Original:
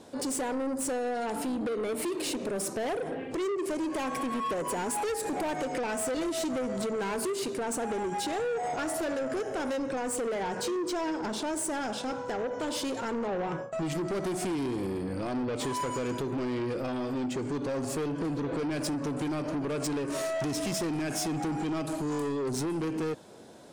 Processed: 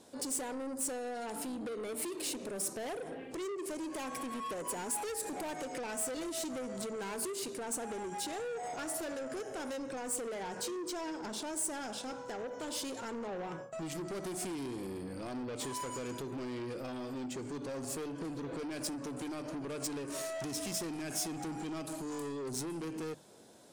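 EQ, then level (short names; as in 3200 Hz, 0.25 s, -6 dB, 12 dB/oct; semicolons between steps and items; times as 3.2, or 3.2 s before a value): high shelf 4900 Hz +9.5 dB; notches 50/100/150 Hz; -8.5 dB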